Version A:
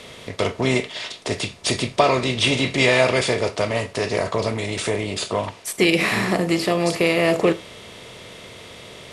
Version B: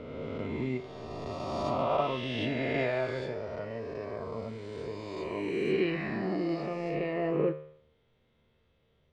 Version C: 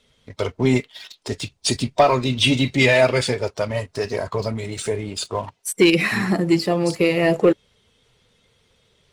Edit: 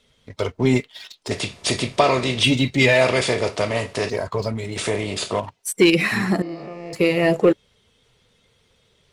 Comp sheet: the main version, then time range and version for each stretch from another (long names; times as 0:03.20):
C
0:01.31–0:02.43: punch in from A
0:03.01–0:04.10: punch in from A
0:04.76–0:05.40: punch in from A
0:06.42–0:06.93: punch in from B